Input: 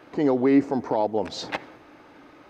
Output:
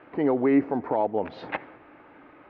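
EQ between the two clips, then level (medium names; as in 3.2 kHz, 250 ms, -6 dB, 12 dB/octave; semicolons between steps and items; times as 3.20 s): low-pass 2.6 kHz 24 dB/octave; bass shelf 470 Hz -3 dB; 0.0 dB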